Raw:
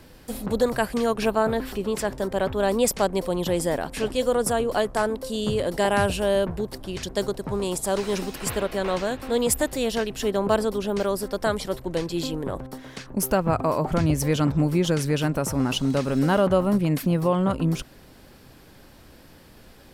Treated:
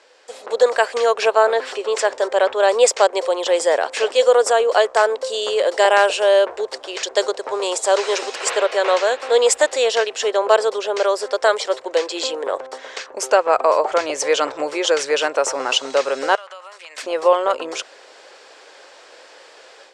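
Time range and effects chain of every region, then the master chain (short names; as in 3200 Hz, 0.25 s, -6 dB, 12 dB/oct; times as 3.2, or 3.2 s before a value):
16.35–16.98 HPF 1400 Hz + compressor 4:1, threshold -43 dBFS
whole clip: elliptic band-pass 470–7500 Hz, stop band 40 dB; AGC gain up to 9 dB; gain +1.5 dB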